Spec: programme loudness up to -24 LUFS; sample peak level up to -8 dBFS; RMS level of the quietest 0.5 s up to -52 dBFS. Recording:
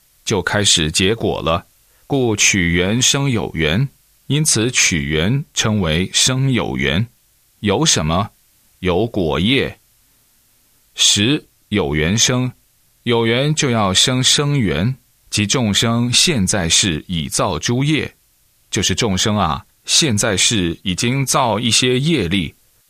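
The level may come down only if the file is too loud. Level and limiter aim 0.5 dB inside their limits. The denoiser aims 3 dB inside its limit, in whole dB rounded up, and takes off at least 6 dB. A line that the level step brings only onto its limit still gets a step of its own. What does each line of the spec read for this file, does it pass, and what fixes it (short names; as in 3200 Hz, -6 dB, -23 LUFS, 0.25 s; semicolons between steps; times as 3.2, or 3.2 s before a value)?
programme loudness -15.5 LUFS: fail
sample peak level -2.0 dBFS: fail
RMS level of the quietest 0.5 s -57 dBFS: OK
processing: gain -9 dB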